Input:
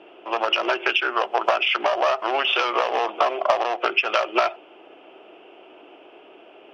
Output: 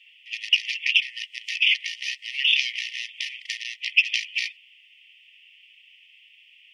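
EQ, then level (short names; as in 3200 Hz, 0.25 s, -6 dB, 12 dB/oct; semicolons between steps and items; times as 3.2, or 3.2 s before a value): brick-wall FIR high-pass 1800 Hz; high shelf 3700 Hz +10.5 dB; -1.0 dB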